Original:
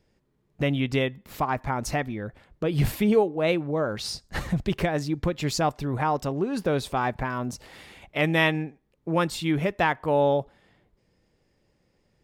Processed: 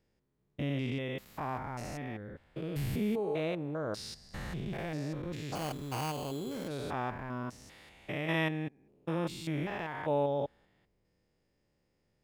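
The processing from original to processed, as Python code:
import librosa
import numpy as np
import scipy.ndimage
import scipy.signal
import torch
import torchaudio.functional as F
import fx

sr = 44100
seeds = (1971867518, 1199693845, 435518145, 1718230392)

y = fx.spec_steps(x, sr, hold_ms=200)
y = fx.sample_hold(y, sr, seeds[0], rate_hz=3700.0, jitter_pct=0, at=(5.55, 6.68))
y = F.gain(torch.from_numpy(y), -7.0).numpy()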